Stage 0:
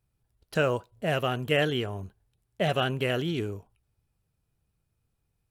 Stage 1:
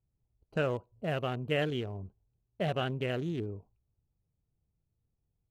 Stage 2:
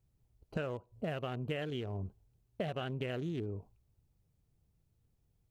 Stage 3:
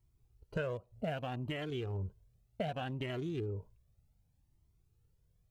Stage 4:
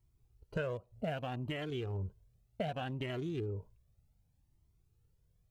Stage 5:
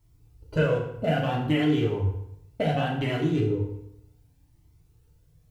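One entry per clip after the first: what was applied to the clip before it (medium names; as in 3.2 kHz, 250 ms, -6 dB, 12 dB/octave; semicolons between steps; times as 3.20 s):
local Wiener filter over 25 samples; bass shelf 440 Hz +3 dB; trim -6.5 dB
compression 12:1, threshold -40 dBFS, peak gain reduction 15 dB; trim +6 dB
Shepard-style flanger rising 0.65 Hz; trim +4.5 dB
no audible change
FDN reverb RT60 0.77 s, low-frequency decay 1.1×, high-frequency decay 0.8×, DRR -3 dB; trim +7.5 dB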